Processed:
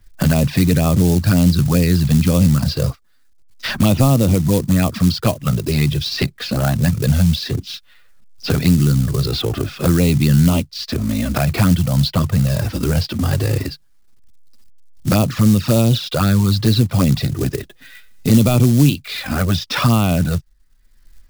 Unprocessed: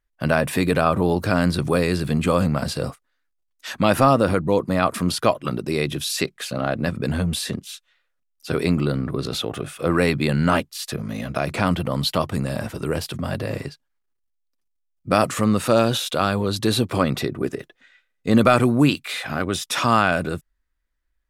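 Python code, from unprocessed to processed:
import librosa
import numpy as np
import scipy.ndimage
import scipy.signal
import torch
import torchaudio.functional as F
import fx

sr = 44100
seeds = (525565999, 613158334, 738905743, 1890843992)

y = fx.env_flanger(x, sr, rest_ms=9.2, full_db=-14.0)
y = scipy.signal.sosfilt(scipy.signal.cheby1(4, 1.0, 5000.0, 'lowpass', fs=sr, output='sos'), y)
y = fx.quant_float(y, sr, bits=2)
y = fx.bass_treble(y, sr, bass_db=14, treble_db=13)
y = fx.band_squash(y, sr, depth_pct=70)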